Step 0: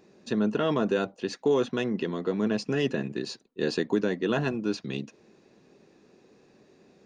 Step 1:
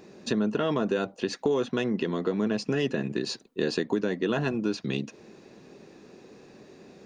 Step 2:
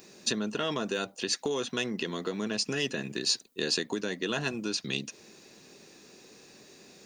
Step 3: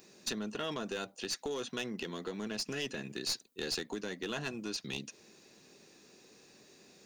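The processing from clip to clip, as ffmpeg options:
ffmpeg -i in.wav -af "acompressor=threshold=-35dB:ratio=2.5,volume=8dB" out.wav
ffmpeg -i in.wav -af "crystalizer=i=7.5:c=0,volume=-7dB" out.wav
ffmpeg -i in.wav -af "aeval=exprs='clip(val(0),-1,0.0501)':channel_layout=same,volume=-6dB" out.wav

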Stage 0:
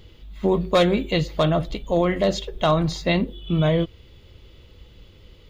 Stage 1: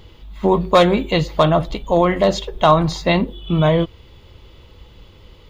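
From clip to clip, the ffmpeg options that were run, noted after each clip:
ffmpeg -i in.wav -af "equalizer=frequency=950:width_type=o:width=0.78:gain=8,volume=3.5dB" out.wav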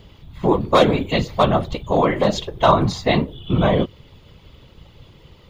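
ffmpeg -i in.wav -af "afftfilt=real='hypot(re,im)*cos(2*PI*random(0))':imag='hypot(re,im)*sin(2*PI*random(1))':win_size=512:overlap=0.75,volume=4.5dB" out.wav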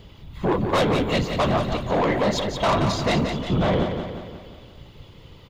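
ffmpeg -i in.wav -filter_complex "[0:a]asoftclip=type=tanh:threshold=-16.5dB,asplit=2[link_01][link_02];[link_02]aecho=0:1:177|354|531|708|885|1062:0.447|0.237|0.125|0.0665|0.0352|0.0187[link_03];[link_01][link_03]amix=inputs=2:normalize=0" out.wav

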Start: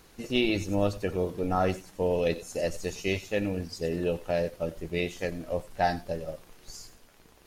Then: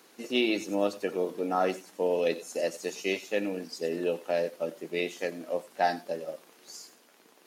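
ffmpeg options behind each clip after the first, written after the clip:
ffmpeg -i in.wav -af "highpass=frequency=230:width=0.5412,highpass=frequency=230:width=1.3066" out.wav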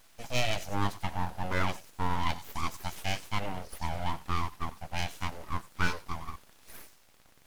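ffmpeg -i in.wav -af "aeval=exprs='abs(val(0))':channel_layout=same" out.wav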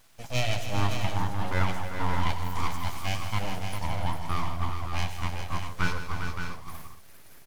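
ffmpeg -i in.wav -filter_complex "[0:a]equalizer=frequency=110:width=1.8:gain=6.5,asplit=2[link_01][link_02];[link_02]aecho=0:1:102|161|299|401|567|636:0.2|0.266|0.237|0.422|0.422|0.2[link_03];[link_01][link_03]amix=inputs=2:normalize=0" out.wav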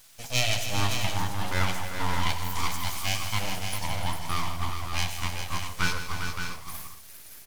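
ffmpeg -i in.wav -af "highshelf=frequency=2300:gain=12,bandreject=frequency=77.62:width_type=h:width=4,bandreject=frequency=155.24:width_type=h:width=4,bandreject=frequency=232.86:width_type=h:width=4,bandreject=frequency=310.48:width_type=h:width=4,bandreject=frequency=388.1:width_type=h:width=4,bandreject=frequency=465.72:width_type=h:width=4,bandreject=frequency=543.34:width_type=h:width=4,bandreject=frequency=620.96:width_type=h:width=4,bandreject=frequency=698.58:width_type=h:width=4,bandreject=frequency=776.2:width_type=h:width=4,bandreject=frequency=853.82:width_type=h:width=4,bandreject=frequency=931.44:width_type=h:width=4,bandreject=frequency=1009.06:width_type=h:width=4,bandreject=frequency=1086.68:width_type=h:width=4,bandreject=frequency=1164.3:width_type=h:width=4,bandreject=frequency=1241.92:width_type=h:width=4,bandreject=frequency=1319.54:width_type=h:width=4,bandreject=frequency=1397.16:width_type=h:width=4,bandreject=frequency=1474.78:width_type=h:width=4,bandreject=frequency=1552.4:width_type=h:width=4,bandreject=frequency=1630.02:width_type=h:width=4,bandreject=frequency=1707.64:width_type=h:width=4,bandreject=frequency=1785.26:width_type=h:width=4,bandreject=frequency=1862.88:width_type=h:width=4,bandreject=frequency=1940.5:width_type=h:width=4,bandreject=frequency=2018.12:width_type=h:width=4,bandreject=frequency=2095.74:width_type=h:width=4,bandreject=frequency=2173.36:width_type=h:width=4,bandreject=frequency=2250.98:width_type=h:width=4,bandreject=frequency=2328.6:width_type=h:width=4,bandreject=frequency=2406.22:width_type=h:width=4,bandreject=frequency=2483.84:width_type=h:width=4,bandreject=frequency=2561.46:width_type=h:width=4,bandreject=frequency=2639.08:width_type=h:width=4,bandreject=frequency=2716.7:width_type=h:width=4,bandreject=frequency=2794.32:width_type=h:width=4,bandreject=frequency=2871.94:width_type=h:width=4,bandreject=frequency=2949.56:width_type=h:width=4,bandreject=frequency=3027.18:width_type=h:width=4,volume=-1.5dB" out.wav

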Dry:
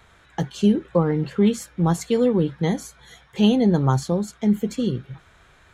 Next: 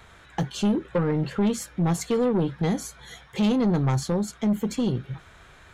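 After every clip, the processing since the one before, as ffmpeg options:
ffmpeg -i in.wav -filter_complex "[0:a]asplit=2[link_01][link_02];[link_02]acompressor=threshold=-27dB:ratio=6,volume=-3dB[link_03];[link_01][link_03]amix=inputs=2:normalize=0,asoftclip=type=tanh:threshold=-16dB,volume=-1.5dB" out.wav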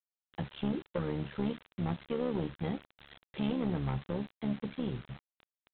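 ffmpeg -i in.wav -af "tremolo=f=71:d=0.75,aresample=8000,acrusher=bits=6:mix=0:aa=0.000001,aresample=44100,volume=-7.5dB" out.wav

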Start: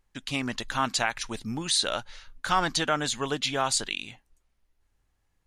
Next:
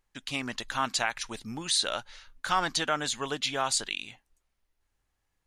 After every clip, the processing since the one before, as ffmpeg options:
ffmpeg -i in.wav -af "lowshelf=frequency=370:gain=-5.5,volume=-1.5dB" out.wav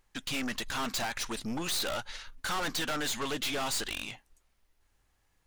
ffmpeg -i in.wav -af "aeval=exprs='(tanh(89.1*val(0)+0.5)-tanh(0.5))/89.1':channel_layout=same,volume=8.5dB" out.wav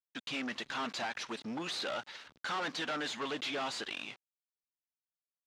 ffmpeg -i in.wav -af "aeval=exprs='val(0)*gte(abs(val(0)),0.00562)':channel_layout=same,highpass=200,lowpass=4300,volume=-2.5dB" out.wav

